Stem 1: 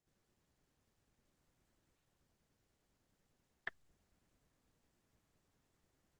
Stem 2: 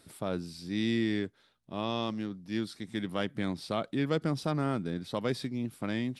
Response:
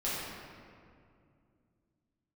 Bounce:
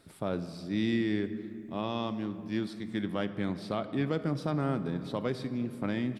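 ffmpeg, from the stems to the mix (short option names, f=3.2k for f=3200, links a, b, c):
-filter_complex "[0:a]aecho=1:1:5.8:0.87,crystalizer=i=2:c=0,volume=-1.5dB,asplit=3[a][b][c];[a]atrim=end=3.12,asetpts=PTS-STARTPTS,afade=t=out:st=3.116:d=0.004:c=hsin[d];[b]atrim=start=3.12:end=3.93,asetpts=PTS-STARTPTS,volume=0[e];[c]atrim=start=3.93,asetpts=PTS-STARTPTS,afade=t=in:d=0.004:c=hsin[f];[d][e][f]concat=n=3:v=0:a=1[g];[1:a]volume=0.5dB,asplit=2[h][i];[i]volume=-16.5dB[j];[2:a]atrim=start_sample=2205[k];[j][k]afir=irnorm=-1:irlink=0[l];[g][h][l]amix=inputs=3:normalize=0,highshelf=f=3.5k:g=-8,alimiter=limit=-19.5dB:level=0:latency=1:release=435"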